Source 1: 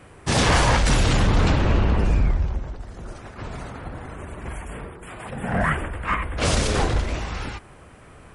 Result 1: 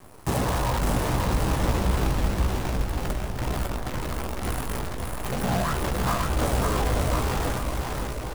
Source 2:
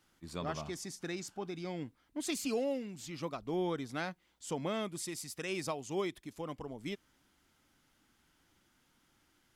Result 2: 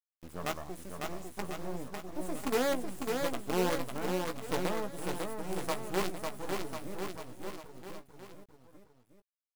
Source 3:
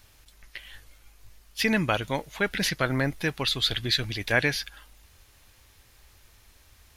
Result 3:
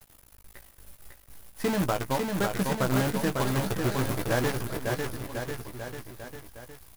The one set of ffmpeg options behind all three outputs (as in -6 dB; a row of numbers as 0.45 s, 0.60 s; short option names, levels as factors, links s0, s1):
-filter_complex "[0:a]acrossover=split=8400[s0][s1];[s1]acompressor=threshold=0.002:ratio=4:attack=1:release=60[s2];[s0][s2]amix=inputs=2:normalize=0,firequalizer=gain_entry='entry(110,0);entry(1000,1);entry(3000,-27);entry(10000,5)':delay=0.05:min_phase=1,acompressor=threshold=0.0631:ratio=10,acrusher=bits=6:dc=4:mix=0:aa=0.000001,asplit=2[s3][s4];[s4]adelay=16,volume=0.398[s5];[s3][s5]amix=inputs=2:normalize=0,aecho=1:1:550|1045|1490|1891|2252:0.631|0.398|0.251|0.158|0.1,volume=1.19"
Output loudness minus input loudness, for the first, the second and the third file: -5.0 LU, +3.0 LU, -3.0 LU